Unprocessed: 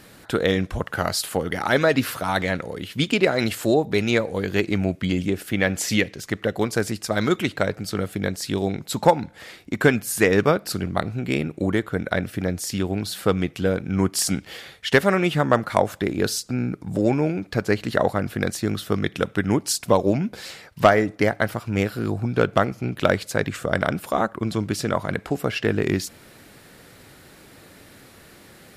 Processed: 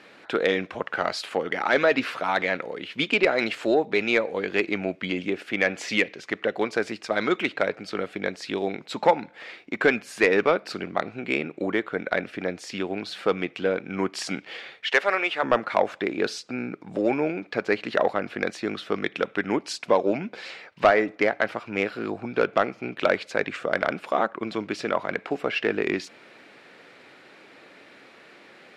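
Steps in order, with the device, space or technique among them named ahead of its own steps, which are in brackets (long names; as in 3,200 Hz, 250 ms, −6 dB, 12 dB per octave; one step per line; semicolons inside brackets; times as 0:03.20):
0:14.90–0:15.43: high-pass filter 560 Hz 12 dB per octave
intercom (band-pass filter 320–3,600 Hz; parametric band 2,400 Hz +5 dB 0.4 octaves; soft clipping −7.5 dBFS, distortion −18 dB)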